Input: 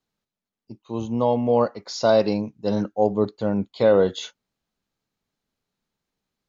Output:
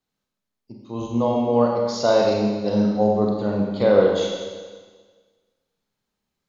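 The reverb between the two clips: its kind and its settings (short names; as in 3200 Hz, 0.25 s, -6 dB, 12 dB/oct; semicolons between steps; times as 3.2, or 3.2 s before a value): Schroeder reverb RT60 1.5 s, combs from 30 ms, DRR -1 dB; gain -1.5 dB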